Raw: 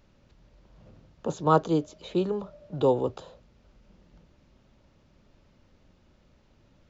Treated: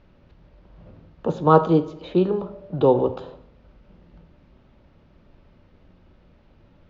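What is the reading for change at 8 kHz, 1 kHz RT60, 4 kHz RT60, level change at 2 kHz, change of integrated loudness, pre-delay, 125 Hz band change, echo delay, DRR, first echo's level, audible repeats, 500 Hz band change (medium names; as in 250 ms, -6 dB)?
no reading, 0.70 s, 0.60 s, +4.5 dB, +6.5 dB, 3 ms, +7.0 dB, no echo, 10.5 dB, no echo, no echo, +6.5 dB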